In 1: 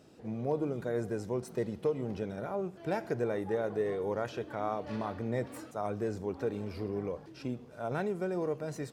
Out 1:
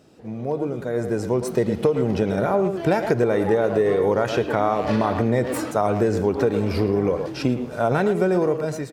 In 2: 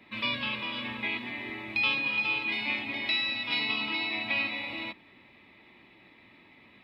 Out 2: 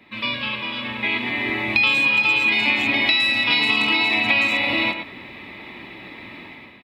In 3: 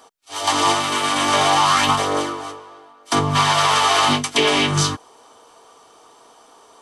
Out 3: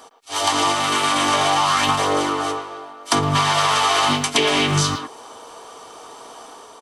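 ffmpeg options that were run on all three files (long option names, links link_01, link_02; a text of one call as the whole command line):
ffmpeg -i in.wav -filter_complex "[0:a]dynaudnorm=framelen=920:gausssize=3:maxgain=14dB,asplit=2[link_01][link_02];[link_02]adelay=110,highpass=300,lowpass=3400,asoftclip=type=hard:threshold=-14.5dB,volume=-9dB[link_03];[link_01][link_03]amix=inputs=2:normalize=0,acompressor=threshold=-21dB:ratio=4,volume=4.5dB" out.wav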